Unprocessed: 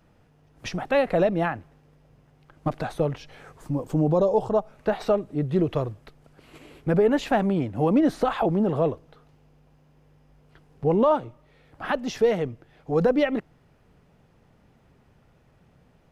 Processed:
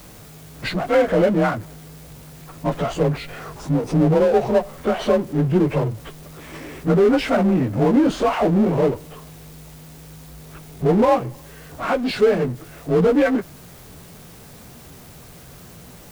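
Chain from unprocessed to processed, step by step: frequency axis rescaled in octaves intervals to 91%; added noise white -66 dBFS; power-law waveshaper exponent 0.7; trim +4 dB

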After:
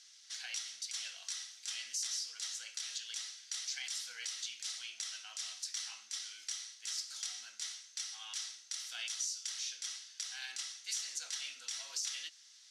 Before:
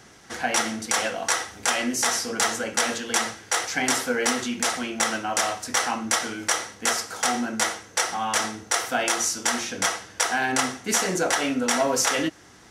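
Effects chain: ladder band-pass 5.1 kHz, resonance 35%; compression 4:1, threshold -42 dBFS, peak gain reduction 10 dB; peak limiter -33 dBFS, peak gain reduction 10 dB; trim +6.5 dB

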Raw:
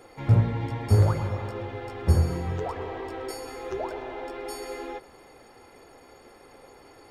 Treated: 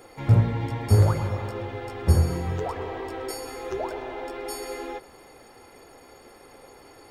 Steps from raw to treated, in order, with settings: treble shelf 7.3 kHz +6 dB; trim +1.5 dB

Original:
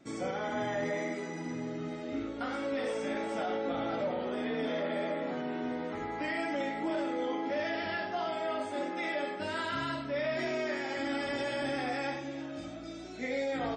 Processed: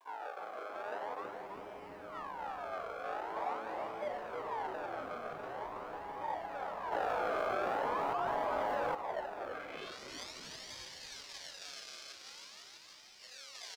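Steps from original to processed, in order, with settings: peaking EQ 1.8 kHz +7.5 dB 0.7 oct; reverberation, pre-delay 3 ms, DRR -2.5 dB; decimation with a swept rate 32×, swing 100% 0.44 Hz; band-pass sweep 940 Hz -> 5.2 kHz, 9.43–10.00 s; bit crusher 10-bit; high-pass 480 Hz 24 dB/octave; treble shelf 6.4 kHz -8 dB; frequency-shifting echo 325 ms, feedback 57%, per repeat -110 Hz, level -5.5 dB; 6.92–8.95 s: level flattener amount 100%; trim -8.5 dB

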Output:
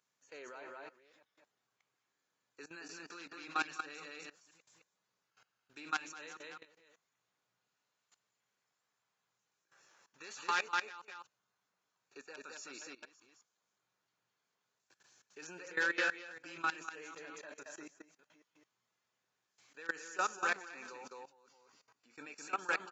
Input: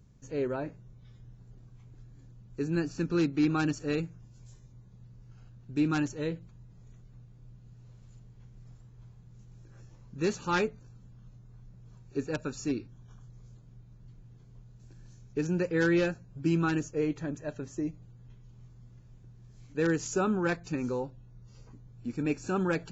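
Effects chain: chunks repeated in reverse 307 ms, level -11.5 dB; high-pass 1.1 kHz 12 dB/octave; treble shelf 5.2 kHz -4 dB; on a send: delay 213 ms -4 dB; on the sum: level held to a coarse grid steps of 18 dB; trim +4.5 dB

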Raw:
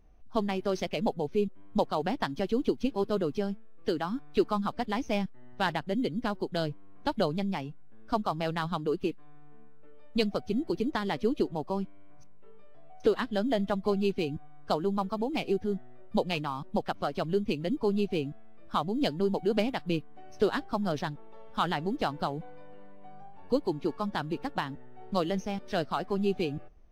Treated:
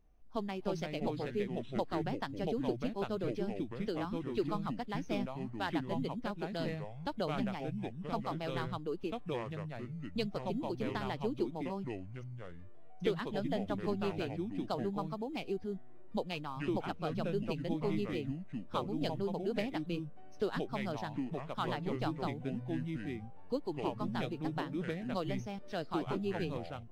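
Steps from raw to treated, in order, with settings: ever faster or slower copies 219 ms, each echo -4 st, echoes 2; trim -8.5 dB

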